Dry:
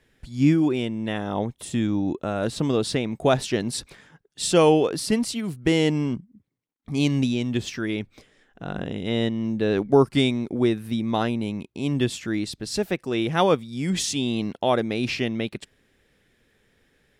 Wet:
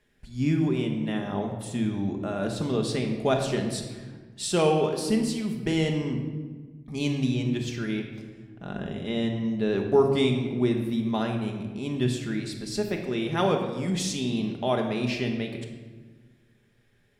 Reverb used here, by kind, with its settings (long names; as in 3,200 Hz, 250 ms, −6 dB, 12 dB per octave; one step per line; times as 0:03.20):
rectangular room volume 1,200 cubic metres, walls mixed, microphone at 1.3 metres
level −6 dB